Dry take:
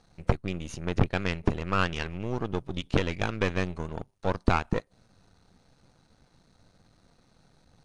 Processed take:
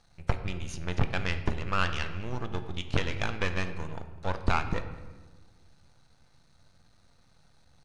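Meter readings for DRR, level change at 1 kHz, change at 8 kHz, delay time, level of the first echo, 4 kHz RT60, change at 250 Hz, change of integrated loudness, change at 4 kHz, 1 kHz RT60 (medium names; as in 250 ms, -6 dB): 8.0 dB, -2.0 dB, 0.0 dB, 204 ms, -22.0 dB, 0.75 s, -6.0 dB, -2.5 dB, 0.0 dB, 1.2 s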